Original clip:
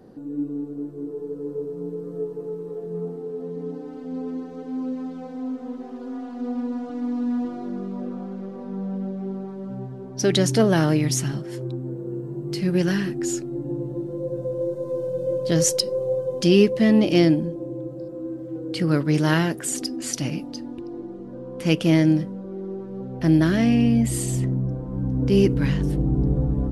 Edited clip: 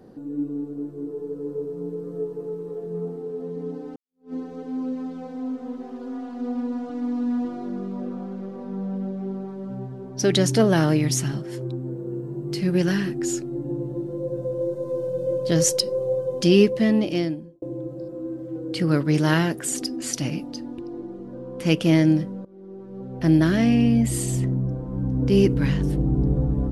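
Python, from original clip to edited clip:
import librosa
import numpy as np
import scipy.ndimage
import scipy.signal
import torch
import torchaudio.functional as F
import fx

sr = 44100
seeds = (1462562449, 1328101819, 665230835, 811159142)

y = fx.edit(x, sr, fx.fade_in_span(start_s=3.96, length_s=0.37, curve='exp'),
    fx.fade_out_span(start_s=16.65, length_s=0.97),
    fx.fade_in_from(start_s=22.45, length_s=0.82, floor_db=-19.0), tone=tone)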